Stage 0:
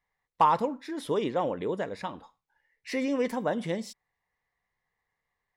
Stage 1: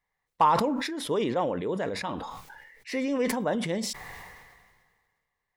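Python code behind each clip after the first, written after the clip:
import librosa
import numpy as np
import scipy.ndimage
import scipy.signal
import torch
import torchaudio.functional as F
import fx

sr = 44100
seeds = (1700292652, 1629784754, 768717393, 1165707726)

y = fx.sustainer(x, sr, db_per_s=35.0)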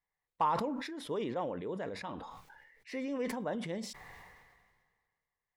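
y = fx.high_shelf(x, sr, hz=4600.0, db=-6.0)
y = y * librosa.db_to_amplitude(-8.5)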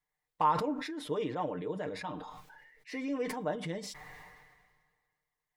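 y = x + 0.68 * np.pad(x, (int(6.6 * sr / 1000.0), 0))[:len(x)]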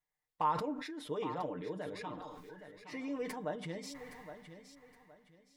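y = fx.echo_feedback(x, sr, ms=817, feedback_pct=28, wet_db=-11.5)
y = y * librosa.db_to_amplitude(-4.5)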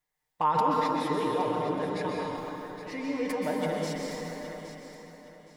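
y = fx.rev_plate(x, sr, seeds[0], rt60_s=2.6, hf_ratio=0.75, predelay_ms=115, drr_db=-2.0)
y = y * librosa.db_to_amplitude(5.5)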